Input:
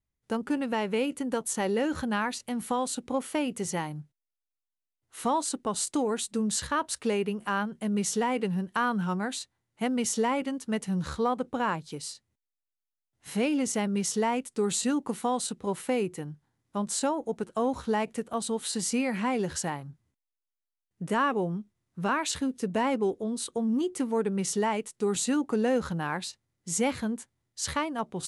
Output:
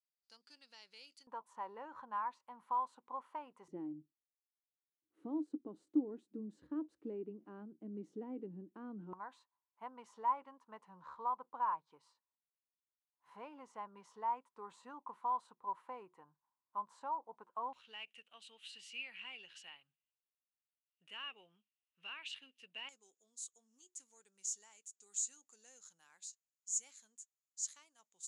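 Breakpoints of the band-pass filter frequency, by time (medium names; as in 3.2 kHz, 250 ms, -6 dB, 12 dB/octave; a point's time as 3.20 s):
band-pass filter, Q 10
4.7 kHz
from 1.27 s 1 kHz
from 3.68 s 310 Hz
from 9.13 s 1 kHz
from 17.73 s 2.8 kHz
from 22.89 s 6.9 kHz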